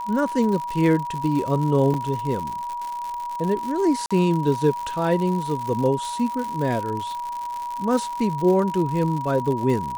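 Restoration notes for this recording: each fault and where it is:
crackle 130/s -27 dBFS
tone 960 Hz -27 dBFS
1.94 gap 2.7 ms
4.06–4.11 gap 46 ms

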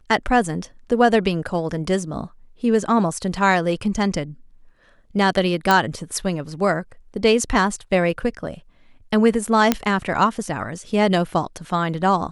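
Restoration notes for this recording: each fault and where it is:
5.71 pop -3 dBFS
9.72 pop -2 dBFS

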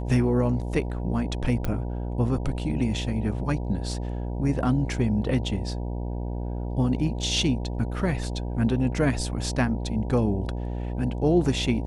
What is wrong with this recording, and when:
buzz 60 Hz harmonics 16 -30 dBFS
1.65 pop -15 dBFS

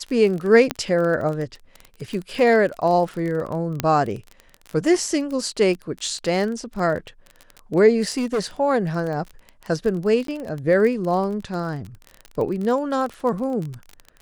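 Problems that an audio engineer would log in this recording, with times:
crackle 28/s -27 dBFS
0.71 pop -7 dBFS
3.8 pop -6 dBFS
8.17–8.41 clipped -18.5 dBFS
10.27–10.28 gap 13 ms

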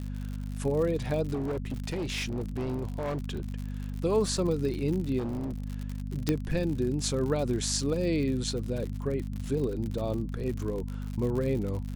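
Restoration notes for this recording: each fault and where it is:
crackle 76/s -34 dBFS
hum 50 Hz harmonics 5 -35 dBFS
1.33–3.59 clipped -28 dBFS
5.18–5.64 clipped -29.5 dBFS
6.29 pop -12 dBFS

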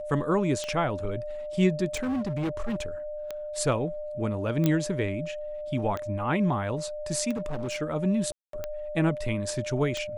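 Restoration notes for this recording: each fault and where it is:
tick 45 rpm -19 dBFS
tone 600 Hz -33 dBFS
1.94–2.86 clipped -25.5 dBFS
4.66 pop -11 dBFS
7.33–7.82 clipped -27 dBFS
8.32–8.53 gap 0.213 s

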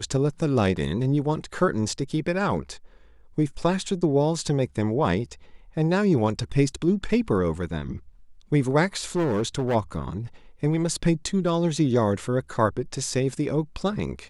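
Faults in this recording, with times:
9.15–9.76 clipped -20 dBFS

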